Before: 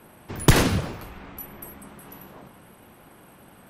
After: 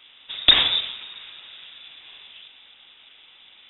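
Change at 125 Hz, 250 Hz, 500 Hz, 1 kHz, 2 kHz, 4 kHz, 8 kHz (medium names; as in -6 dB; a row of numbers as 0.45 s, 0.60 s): -23.0 dB, -17.0 dB, -12.0 dB, -5.5 dB, +1.0 dB, +14.5 dB, under -40 dB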